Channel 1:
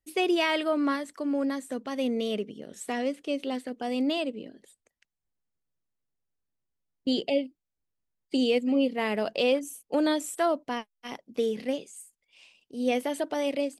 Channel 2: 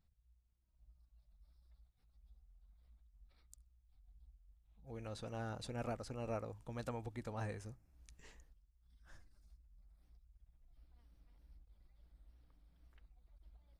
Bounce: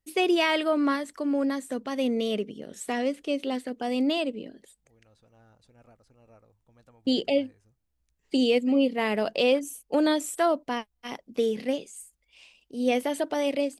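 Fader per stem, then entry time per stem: +2.0, -15.0 dB; 0.00, 0.00 s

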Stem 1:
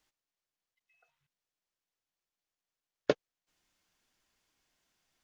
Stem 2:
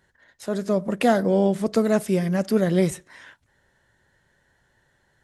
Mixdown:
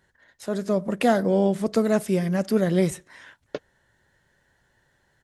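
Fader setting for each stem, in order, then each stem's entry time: -5.0, -1.0 dB; 0.45, 0.00 s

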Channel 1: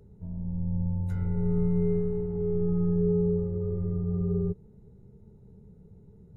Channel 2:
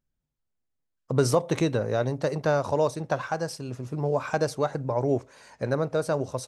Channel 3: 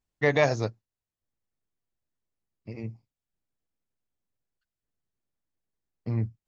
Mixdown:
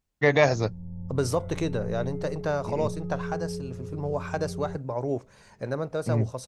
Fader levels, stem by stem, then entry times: -8.5, -4.0, +2.5 dB; 0.25, 0.00, 0.00 s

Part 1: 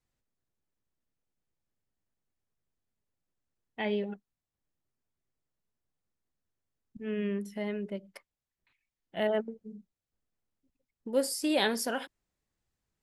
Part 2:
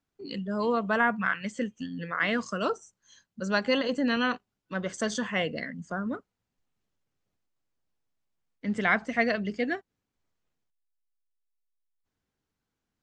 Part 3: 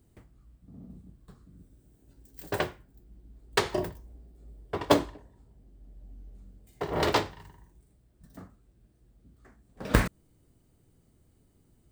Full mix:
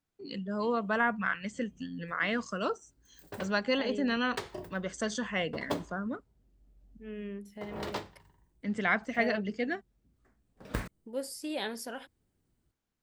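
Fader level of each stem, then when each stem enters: -8.0, -3.5, -12.0 dB; 0.00, 0.00, 0.80 s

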